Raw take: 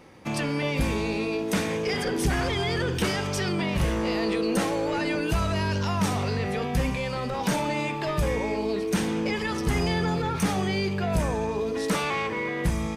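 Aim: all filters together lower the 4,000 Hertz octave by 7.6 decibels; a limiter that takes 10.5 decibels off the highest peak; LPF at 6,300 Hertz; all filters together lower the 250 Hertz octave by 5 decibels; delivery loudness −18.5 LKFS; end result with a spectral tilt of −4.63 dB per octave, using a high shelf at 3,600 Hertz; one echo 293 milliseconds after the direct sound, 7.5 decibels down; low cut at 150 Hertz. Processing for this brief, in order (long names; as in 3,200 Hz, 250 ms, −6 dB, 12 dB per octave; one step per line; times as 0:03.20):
high-pass filter 150 Hz
low-pass filter 6,300 Hz
parametric band 250 Hz −6 dB
high-shelf EQ 3,600 Hz −5.5 dB
parametric band 4,000 Hz −6 dB
brickwall limiter −25 dBFS
single-tap delay 293 ms −7.5 dB
level +14.5 dB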